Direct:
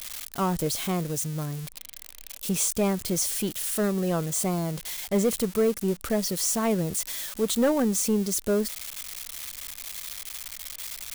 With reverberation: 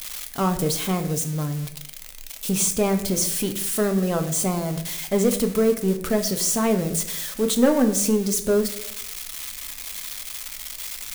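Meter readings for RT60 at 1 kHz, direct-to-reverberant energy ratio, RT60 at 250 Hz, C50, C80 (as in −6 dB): 0.65 s, 6.0 dB, 0.85 s, 11.0 dB, 13.5 dB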